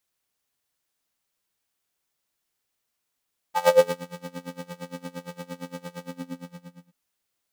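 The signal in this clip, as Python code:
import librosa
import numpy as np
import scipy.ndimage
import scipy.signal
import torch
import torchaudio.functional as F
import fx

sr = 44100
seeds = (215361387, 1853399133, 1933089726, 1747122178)

y = fx.sub_patch_tremolo(sr, seeds[0], note=53, wave='square', wave2='saw', interval_st=7, detune_cents=13, level2_db=-16.0, sub_db=-11.5, noise_db=-18.5, kind='highpass', cutoff_hz=210.0, q=10.0, env_oct=2.0, env_decay_s=0.47, env_sustain_pct=25, attack_ms=92.0, decay_s=0.37, sustain_db=-19.0, release_s=0.93, note_s=2.45, lfo_hz=8.7, tremolo_db=23.0)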